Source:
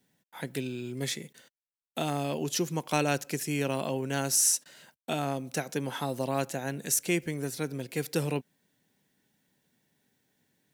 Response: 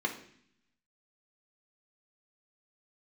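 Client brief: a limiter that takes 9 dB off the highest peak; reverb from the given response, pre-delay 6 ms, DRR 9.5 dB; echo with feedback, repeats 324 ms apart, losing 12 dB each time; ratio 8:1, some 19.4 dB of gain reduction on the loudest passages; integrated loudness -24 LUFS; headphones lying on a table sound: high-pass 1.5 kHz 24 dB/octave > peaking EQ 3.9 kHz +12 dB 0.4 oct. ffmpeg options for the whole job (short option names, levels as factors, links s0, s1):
-filter_complex "[0:a]acompressor=threshold=0.00794:ratio=8,alimiter=level_in=3.55:limit=0.0631:level=0:latency=1,volume=0.282,aecho=1:1:324|648|972:0.251|0.0628|0.0157,asplit=2[s0][s1];[1:a]atrim=start_sample=2205,adelay=6[s2];[s1][s2]afir=irnorm=-1:irlink=0,volume=0.158[s3];[s0][s3]amix=inputs=2:normalize=0,highpass=f=1500:w=0.5412,highpass=f=1500:w=1.3066,equalizer=f=3900:t=o:w=0.4:g=12,volume=16.8"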